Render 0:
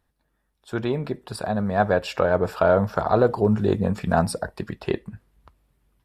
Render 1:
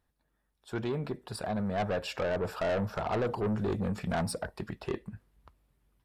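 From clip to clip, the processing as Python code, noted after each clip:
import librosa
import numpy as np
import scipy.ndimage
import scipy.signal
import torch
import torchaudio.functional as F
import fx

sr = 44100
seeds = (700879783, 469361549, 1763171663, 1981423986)

y = 10.0 ** (-21.0 / 20.0) * np.tanh(x / 10.0 ** (-21.0 / 20.0))
y = y * 10.0 ** (-5.0 / 20.0)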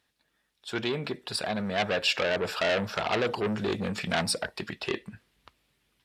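y = fx.weighting(x, sr, curve='D')
y = y * 10.0 ** (3.0 / 20.0)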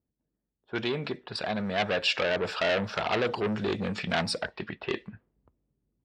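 y = scipy.signal.sosfilt(scipy.signal.butter(2, 5800.0, 'lowpass', fs=sr, output='sos'), x)
y = fx.env_lowpass(y, sr, base_hz=320.0, full_db=-27.5)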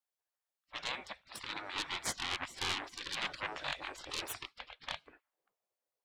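y = fx.tracing_dist(x, sr, depth_ms=0.032)
y = fx.spec_gate(y, sr, threshold_db=-20, keep='weak')
y = y * 10.0 ** (1.0 / 20.0)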